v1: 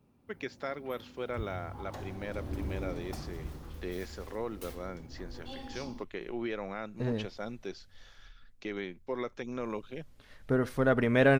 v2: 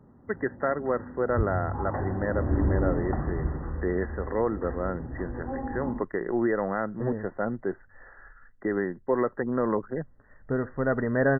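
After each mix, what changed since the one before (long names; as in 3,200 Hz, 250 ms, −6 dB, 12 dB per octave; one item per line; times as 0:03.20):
first voice +10.5 dB
background +12.0 dB
master: add linear-phase brick-wall low-pass 2,000 Hz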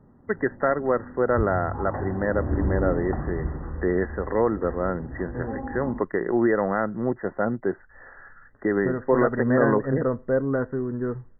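first voice +4.5 dB
second voice: entry −1.65 s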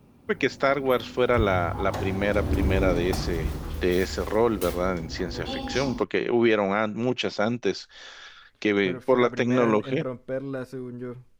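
second voice −7.5 dB
master: remove linear-phase brick-wall low-pass 2,000 Hz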